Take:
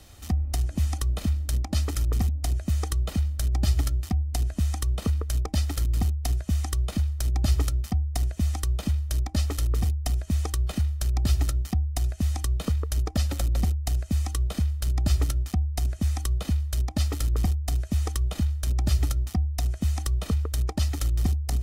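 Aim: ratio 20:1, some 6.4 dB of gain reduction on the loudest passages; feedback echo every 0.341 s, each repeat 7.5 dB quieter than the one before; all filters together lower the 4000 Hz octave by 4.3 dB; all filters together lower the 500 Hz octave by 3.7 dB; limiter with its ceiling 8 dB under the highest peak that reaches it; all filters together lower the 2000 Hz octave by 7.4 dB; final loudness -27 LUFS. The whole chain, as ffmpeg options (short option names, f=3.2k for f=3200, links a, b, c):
-af "equalizer=f=500:t=o:g=-4.5,equalizer=f=2k:t=o:g=-8,equalizer=f=4k:t=o:g=-3.5,acompressor=threshold=-23dB:ratio=20,alimiter=limit=-23.5dB:level=0:latency=1,aecho=1:1:341|682|1023|1364|1705:0.422|0.177|0.0744|0.0312|0.0131,volume=4dB"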